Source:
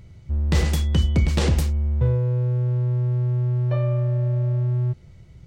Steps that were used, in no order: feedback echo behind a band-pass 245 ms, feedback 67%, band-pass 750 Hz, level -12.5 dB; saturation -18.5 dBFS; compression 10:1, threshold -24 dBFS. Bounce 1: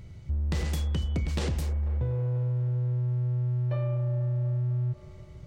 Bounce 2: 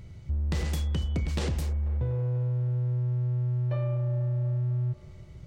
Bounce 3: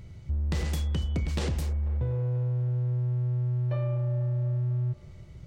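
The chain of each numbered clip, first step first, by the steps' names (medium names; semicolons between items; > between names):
feedback echo behind a band-pass > compression > saturation; compression > feedback echo behind a band-pass > saturation; compression > saturation > feedback echo behind a band-pass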